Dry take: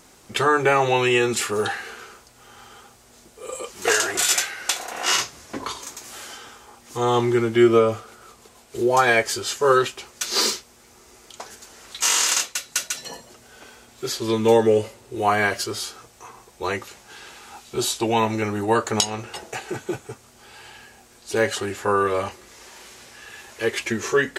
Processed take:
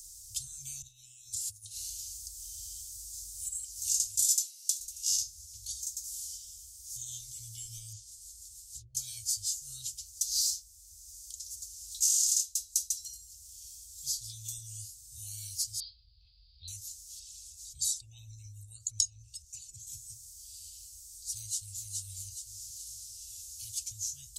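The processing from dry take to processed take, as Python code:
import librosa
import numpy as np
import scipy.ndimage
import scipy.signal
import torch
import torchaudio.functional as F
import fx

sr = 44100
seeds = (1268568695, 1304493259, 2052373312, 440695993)

y = fx.over_compress(x, sr, threshold_db=-33.0, ratio=-1.0, at=(0.82, 3.49))
y = fx.highpass(y, sr, hz=1100.0, slope=6, at=(4.24, 4.79))
y = fx.env_lowpass_down(y, sr, base_hz=320.0, full_db=-17.0, at=(7.92, 8.95))
y = fx.cheby1_lowpass(y, sr, hz=4900.0, order=10, at=(15.8, 16.68))
y = fx.envelope_sharpen(y, sr, power=1.5, at=(17.19, 19.87))
y = fx.echo_throw(y, sr, start_s=21.33, length_s=0.53, ms=420, feedback_pct=40, wet_db=-4.5)
y = scipy.signal.sosfilt(scipy.signal.cheby2(4, 60, [230.0, 1900.0], 'bandstop', fs=sr, output='sos'), y)
y = fx.hum_notches(y, sr, base_hz=60, count=2)
y = fx.band_squash(y, sr, depth_pct=40)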